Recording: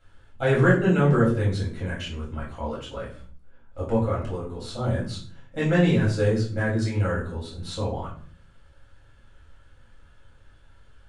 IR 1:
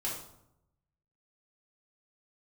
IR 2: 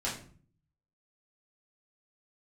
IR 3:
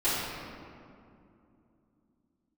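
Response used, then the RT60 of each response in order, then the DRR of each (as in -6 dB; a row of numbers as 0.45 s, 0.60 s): 2; 0.80 s, 0.45 s, 2.6 s; -5.5 dB, -7.5 dB, -15.0 dB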